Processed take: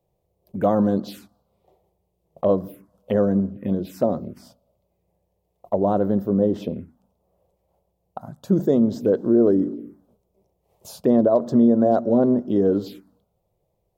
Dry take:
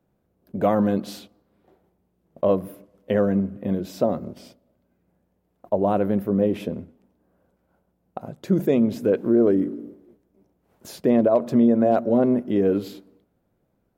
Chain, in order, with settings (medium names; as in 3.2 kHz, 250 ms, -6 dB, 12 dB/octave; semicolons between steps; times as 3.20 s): touch-sensitive phaser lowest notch 250 Hz, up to 2.4 kHz, full sweep at -20 dBFS; trim +1.5 dB